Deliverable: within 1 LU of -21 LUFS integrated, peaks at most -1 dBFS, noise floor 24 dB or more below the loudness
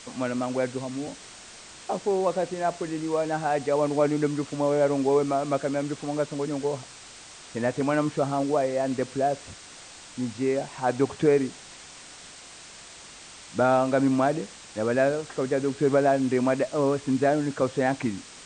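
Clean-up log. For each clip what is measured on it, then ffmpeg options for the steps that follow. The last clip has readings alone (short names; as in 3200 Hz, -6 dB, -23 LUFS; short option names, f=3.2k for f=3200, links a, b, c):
noise floor -46 dBFS; noise floor target -50 dBFS; loudness -26.0 LUFS; peak -9.5 dBFS; loudness target -21.0 LUFS
-> -af "afftdn=nr=6:nf=-46"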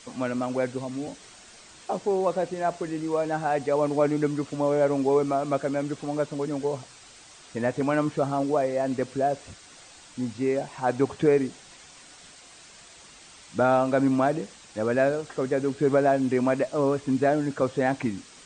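noise floor -50 dBFS; loudness -26.0 LUFS; peak -9.5 dBFS; loudness target -21.0 LUFS
-> -af "volume=5dB"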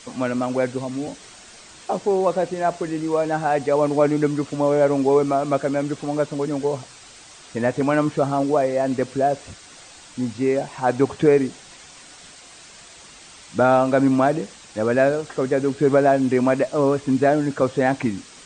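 loudness -21.0 LUFS; peak -4.5 dBFS; noise floor -45 dBFS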